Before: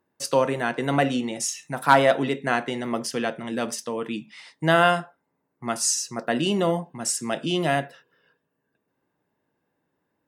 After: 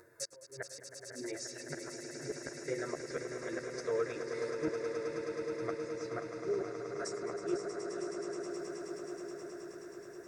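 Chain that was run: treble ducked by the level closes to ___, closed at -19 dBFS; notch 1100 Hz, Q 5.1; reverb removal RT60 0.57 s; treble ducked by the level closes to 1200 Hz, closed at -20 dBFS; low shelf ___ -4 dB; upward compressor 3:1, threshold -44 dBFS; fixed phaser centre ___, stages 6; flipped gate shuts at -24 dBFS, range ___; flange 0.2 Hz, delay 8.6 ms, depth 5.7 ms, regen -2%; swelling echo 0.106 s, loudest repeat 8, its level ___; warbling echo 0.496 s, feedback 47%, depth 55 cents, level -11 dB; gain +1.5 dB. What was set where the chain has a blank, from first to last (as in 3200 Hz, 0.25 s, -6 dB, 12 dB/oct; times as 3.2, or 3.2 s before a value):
980 Hz, 460 Hz, 820 Hz, -35 dB, -10 dB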